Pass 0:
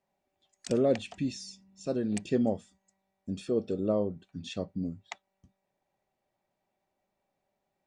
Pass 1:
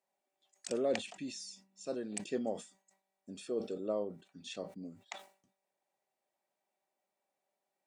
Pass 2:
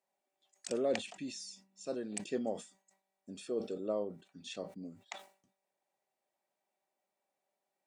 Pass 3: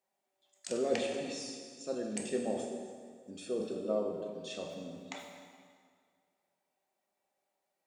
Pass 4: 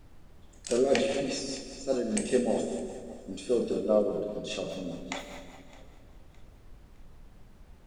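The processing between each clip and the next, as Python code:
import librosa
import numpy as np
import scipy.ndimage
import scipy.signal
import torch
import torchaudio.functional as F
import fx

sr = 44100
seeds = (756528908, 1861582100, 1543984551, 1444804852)

y1 = scipy.signal.sosfilt(scipy.signal.bessel(2, 390.0, 'highpass', norm='mag', fs=sr, output='sos'), x)
y1 = fx.peak_eq(y1, sr, hz=8700.0, db=6.0, octaves=0.7)
y1 = fx.sustainer(y1, sr, db_per_s=150.0)
y1 = y1 * 10.0 ** (-4.5 / 20.0)
y2 = y1
y3 = fx.rev_plate(y2, sr, seeds[0], rt60_s=2.0, hf_ratio=0.8, predelay_ms=0, drr_db=0.5)
y4 = fx.rotary(y3, sr, hz=5.0)
y4 = fx.dmg_noise_colour(y4, sr, seeds[1], colour='brown', level_db=-59.0)
y4 = fx.echo_feedback(y4, sr, ms=613, feedback_pct=41, wet_db=-22.0)
y4 = y4 * 10.0 ** (9.0 / 20.0)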